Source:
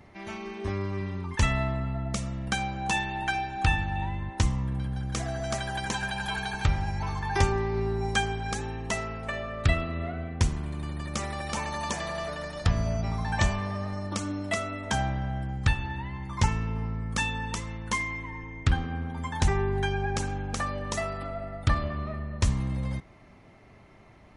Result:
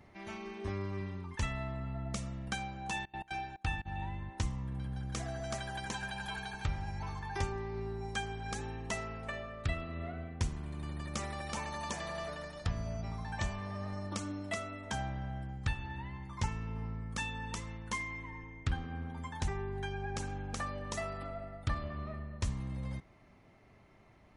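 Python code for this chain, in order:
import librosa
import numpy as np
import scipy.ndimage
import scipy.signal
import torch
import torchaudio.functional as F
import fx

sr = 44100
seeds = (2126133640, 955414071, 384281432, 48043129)

y = fx.step_gate(x, sr, bpm=177, pattern='.x.xxx.xx', floor_db=-24.0, edge_ms=4.5, at=(2.89, 3.85), fade=0.02)
y = fx.rider(y, sr, range_db=3, speed_s=0.5)
y = y * librosa.db_to_amplitude(-9.0)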